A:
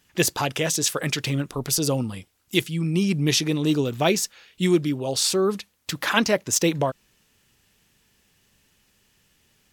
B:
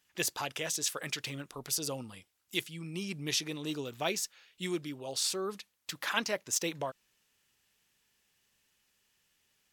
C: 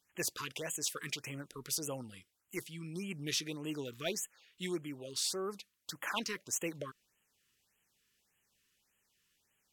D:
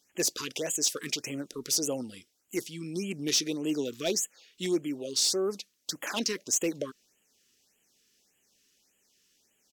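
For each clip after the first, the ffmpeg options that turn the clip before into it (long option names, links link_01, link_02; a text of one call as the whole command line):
ffmpeg -i in.wav -af "lowshelf=frequency=420:gain=-10.5,volume=-9dB" out.wav
ffmpeg -i in.wav -af "asoftclip=type=tanh:threshold=-20dB,afftfilt=real='re*(1-between(b*sr/1024,640*pow(4800/640,0.5+0.5*sin(2*PI*1.7*pts/sr))/1.41,640*pow(4800/640,0.5+0.5*sin(2*PI*1.7*pts/sr))*1.41))':imag='im*(1-between(b*sr/1024,640*pow(4800/640,0.5+0.5*sin(2*PI*1.7*pts/sr))/1.41,640*pow(4800/640,0.5+0.5*sin(2*PI*1.7*pts/sr))*1.41))':win_size=1024:overlap=0.75,volume=-2.5dB" out.wav
ffmpeg -i in.wav -af "volume=30.5dB,asoftclip=hard,volume=-30.5dB,firequalizer=gain_entry='entry(130,0);entry(250,11);entry(660,8);entry(1000,0);entry(5700,13);entry(9200,5)':delay=0.05:min_phase=1" out.wav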